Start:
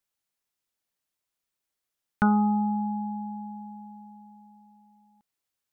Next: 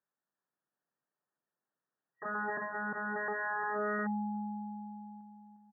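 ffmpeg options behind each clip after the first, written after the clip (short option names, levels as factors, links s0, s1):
-filter_complex "[0:a]asplit=2[s0][s1];[s1]adelay=354,lowpass=f=1500:p=1,volume=0.668,asplit=2[s2][s3];[s3]adelay=354,lowpass=f=1500:p=1,volume=0.44,asplit=2[s4][s5];[s5]adelay=354,lowpass=f=1500:p=1,volume=0.44,asplit=2[s6][s7];[s7]adelay=354,lowpass=f=1500:p=1,volume=0.44,asplit=2[s8][s9];[s9]adelay=354,lowpass=f=1500:p=1,volume=0.44,asplit=2[s10][s11];[s11]adelay=354,lowpass=f=1500:p=1,volume=0.44[s12];[s0][s2][s4][s6][s8][s10][s12]amix=inputs=7:normalize=0,aeval=exprs='(mod(25.1*val(0)+1,2)-1)/25.1':c=same,afftfilt=real='re*between(b*sr/4096,120,1900)':imag='im*between(b*sr/4096,120,1900)':win_size=4096:overlap=0.75"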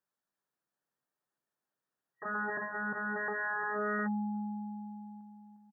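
-filter_complex "[0:a]asplit=2[s0][s1];[s1]adelay=15,volume=0.282[s2];[s0][s2]amix=inputs=2:normalize=0"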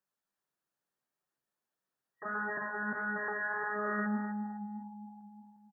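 -af "flanger=delay=5.3:depth=4.9:regen=70:speed=1.6:shape=sinusoidal,aecho=1:1:255|510|765:0.299|0.0597|0.0119,volume=1.5"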